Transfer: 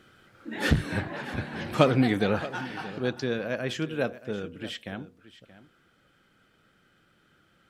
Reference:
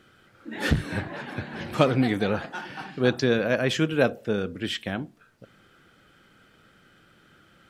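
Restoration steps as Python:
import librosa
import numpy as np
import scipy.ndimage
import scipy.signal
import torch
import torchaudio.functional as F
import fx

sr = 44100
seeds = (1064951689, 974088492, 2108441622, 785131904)

y = fx.fix_echo_inverse(x, sr, delay_ms=627, level_db=-16.5)
y = fx.fix_level(y, sr, at_s=2.98, step_db=7.0)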